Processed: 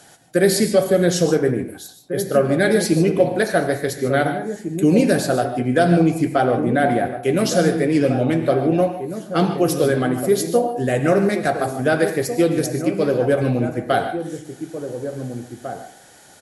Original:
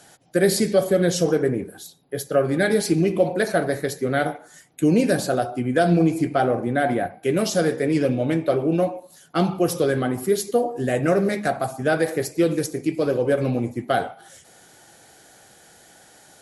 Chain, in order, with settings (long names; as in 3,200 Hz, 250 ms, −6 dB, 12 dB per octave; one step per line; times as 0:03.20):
slap from a distant wall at 300 metres, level −9 dB
reverb whose tail is shaped and stops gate 170 ms rising, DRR 9.5 dB
level +2.5 dB